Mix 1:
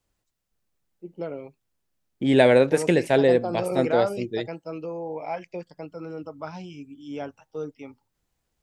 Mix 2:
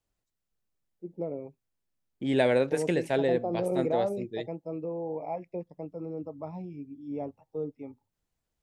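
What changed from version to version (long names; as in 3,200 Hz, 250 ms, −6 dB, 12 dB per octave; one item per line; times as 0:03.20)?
first voice: add moving average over 29 samples
second voice −7.5 dB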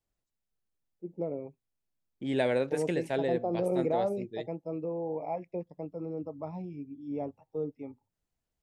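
second voice −4.0 dB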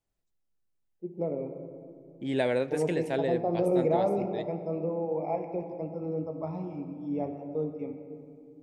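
reverb: on, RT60 2.3 s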